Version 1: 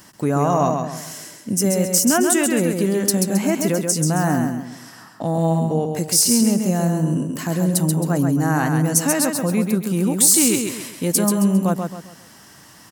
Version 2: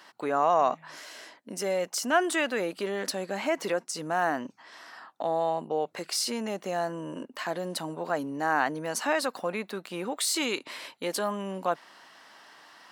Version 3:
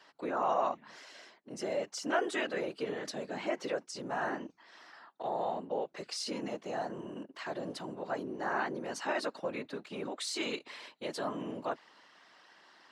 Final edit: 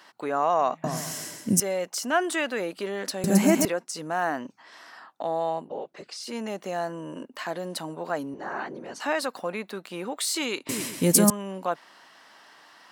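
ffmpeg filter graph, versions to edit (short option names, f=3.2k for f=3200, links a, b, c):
-filter_complex "[0:a]asplit=3[a][b][c];[2:a]asplit=2[d][e];[1:a]asplit=6[f][g][h][i][j][k];[f]atrim=end=0.842[l];[a]atrim=start=0.838:end=1.602[m];[g]atrim=start=1.598:end=3.242[n];[b]atrim=start=3.238:end=3.652[o];[h]atrim=start=3.648:end=5.74[p];[d]atrim=start=5.58:end=6.36[q];[i]atrim=start=6.2:end=8.342[r];[e]atrim=start=8.338:end=9.002[s];[j]atrim=start=8.998:end=10.692[t];[c]atrim=start=10.688:end=11.302[u];[k]atrim=start=11.298[v];[l][m]acrossfade=d=0.004:c1=hsin:c2=hsin[w];[w][n]acrossfade=d=0.004:c1=hsin:c2=hsin[x];[x][o]acrossfade=d=0.004:c1=hsin:c2=hsin[y];[y][p]acrossfade=d=0.004:c1=hsin:c2=hsin[z];[z][q]acrossfade=d=0.16:c1=tri:c2=tri[aa];[aa][r]acrossfade=d=0.16:c1=tri:c2=tri[ab];[ab][s]acrossfade=d=0.004:c1=hsin:c2=hsin[ac];[ac][t]acrossfade=d=0.004:c1=hsin:c2=hsin[ad];[ad][u]acrossfade=d=0.004:c1=hsin:c2=hsin[ae];[ae][v]acrossfade=d=0.004:c1=hsin:c2=hsin"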